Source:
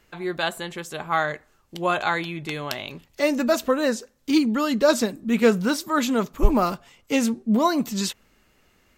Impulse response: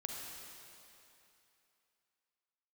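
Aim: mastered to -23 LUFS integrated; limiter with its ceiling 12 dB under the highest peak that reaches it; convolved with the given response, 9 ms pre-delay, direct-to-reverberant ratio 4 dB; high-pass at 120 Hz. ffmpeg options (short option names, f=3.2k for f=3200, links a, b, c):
-filter_complex "[0:a]highpass=120,alimiter=limit=-18dB:level=0:latency=1,asplit=2[a][b];[1:a]atrim=start_sample=2205,adelay=9[c];[b][c]afir=irnorm=-1:irlink=0,volume=-3.5dB[d];[a][d]amix=inputs=2:normalize=0,volume=3.5dB"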